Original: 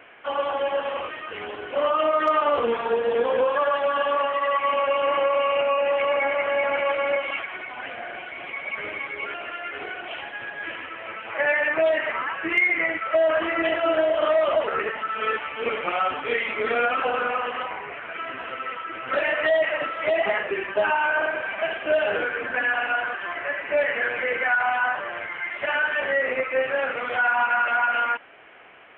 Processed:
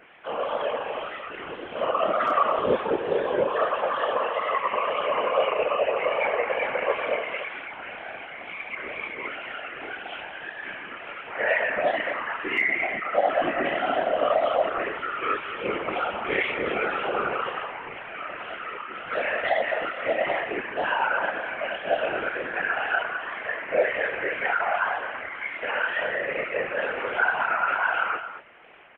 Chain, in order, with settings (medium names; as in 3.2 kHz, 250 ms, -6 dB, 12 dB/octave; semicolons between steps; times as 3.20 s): wow and flutter 71 cents; chorus voices 4, 0.69 Hz, delay 28 ms, depth 3.3 ms; echo from a far wall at 37 m, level -10 dB; whisper effect